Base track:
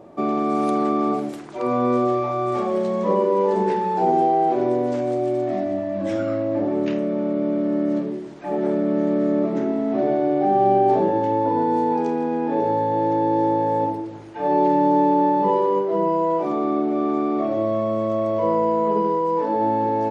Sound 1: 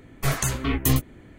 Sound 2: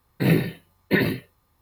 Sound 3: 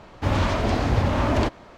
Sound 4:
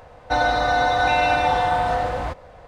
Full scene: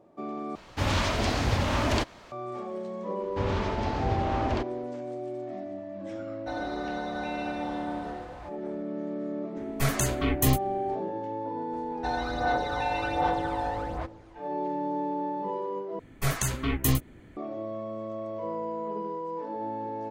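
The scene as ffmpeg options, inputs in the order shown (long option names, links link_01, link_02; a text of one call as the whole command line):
ffmpeg -i bed.wav -i cue0.wav -i cue1.wav -i cue2.wav -i cue3.wav -filter_complex "[3:a]asplit=2[link_01][link_02];[4:a]asplit=2[link_03][link_04];[1:a]asplit=2[link_05][link_06];[0:a]volume=-13.5dB[link_07];[link_01]highshelf=frequency=2100:gain=10.5[link_08];[link_02]lowpass=6200[link_09];[link_04]aphaser=in_gain=1:out_gain=1:delay=1.2:decay=0.56:speed=1.3:type=sinusoidal[link_10];[link_07]asplit=3[link_11][link_12][link_13];[link_11]atrim=end=0.554[link_14];[link_08]atrim=end=1.77,asetpts=PTS-STARTPTS,volume=-5.5dB[link_15];[link_12]atrim=start=2.316:end=15.994[link_16];[link_06]atrim=end=1.38,asetpts=PTS-STARTPTS,volume=-3.5dB[link_17];[link_13]atrim=start=17.366[link_18];[link_09]atrim=end=1.77,asetpts=PTS-STARTPTS,volume=-8dB,afade=type=in:duration=0.1,afade=type=out:start_time=1.67:duration=0.1,adelay=3140[link_19];[link_03]atrim=end=2.67,asetpts=PTS-STARTPTS,volume=-17dB,afade=type=in:duration=0.004:curve=hsin,afade=type=out:start_time=2.666:duration=0.004:curve=hsin,adelay=6160[link_20];[link_05]atrim=end=1.38,asetpts=PTS-STARTPTS,volume=-2.5dB,afade=type=in:duration=0.004:curve=hsin,afade=type=out:start_time=1.376:duration=0.004:curve=hsin,adelay=9570[link_21];[link_10]atrim=end=2.67,asetpts=PTS-STARTPTS,volume=-13dB,afade=type=in:duration=0.004:curve=hsin,afade=type=out:start_time=2.666:duration=0.004:curve=hsin,adelay=11730[link_22];[link_14][link_15]acrossfade=duration=0.004:curve1=hsin:curve2=hsin[link_23];[link_23][link_16]acrossfade=duration=0.004:curve1=hsin:curve2=hsin[link_24];[link_24][link_17]acrossfade=duration=0.004:curve1=hsin:curve2=hsin[link_25];[link_25][link_18]acrossfade=duration=0.004:curve1=hsin:curve2=hsin[link_26];[link_26][link_19][link_20][link_21][link_22]amix=inputs=5:normalize=0" out.wav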